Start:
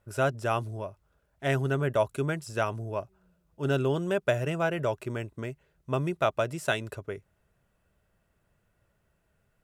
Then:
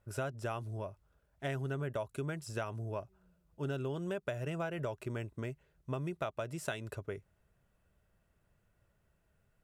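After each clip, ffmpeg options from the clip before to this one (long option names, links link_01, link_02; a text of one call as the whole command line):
ffmpeg -i in.wav -af "lowshelf=frequency=130:gain=4,acompressor=threshold=-30dB:ratio=6,volume=-4dB" out.wav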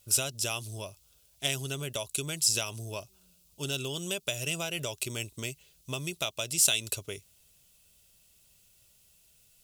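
ffmpeg -i in.wav -af "aexciter=amount=10:drive=7.4:freq=2600" out.wav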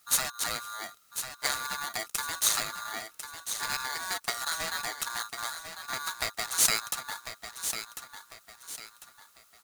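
ffmpeg -i in.wav -filter_complex "[0:a]asplit=2[link_01][link_02];[link_02]aecho=0:1:1048|2096|3144|4192:0.355|0.128|0.046|0.0166[link_03];[link_01][link_03]amix=inputs=2:normalize=0,aeval=exprs='val(0)*sgn(sin(2*PI*1300*n/s))':channel_layout=same" out.wav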